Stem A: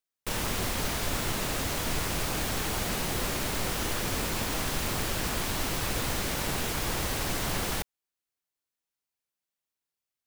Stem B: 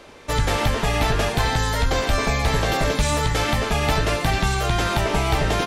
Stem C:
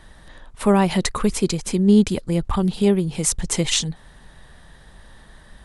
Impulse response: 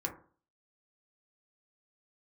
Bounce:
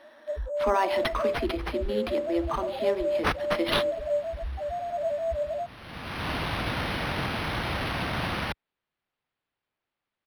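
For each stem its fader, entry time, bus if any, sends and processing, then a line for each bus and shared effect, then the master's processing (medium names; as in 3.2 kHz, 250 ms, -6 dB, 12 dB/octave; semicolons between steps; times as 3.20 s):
+3.0 dB, 0.70 s, no send, high-pass 61 Hz; auto duck -20 dB, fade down 1.25 s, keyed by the third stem
-4.5 dB, 0.00 s, no send, resonant low-pass 620 Hz, resonance Q 6.5; loudest bins only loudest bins 1
-6.0 dB, 0.00 s, send -3.5 dB, Chebyshev high-pass 230 Hz, order 8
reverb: on, RT60 0.45 s, pre-delay 3 ms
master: peaking EQ 420 Hz -7 dB 0.67 oct; decimation joined by straight lines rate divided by 6×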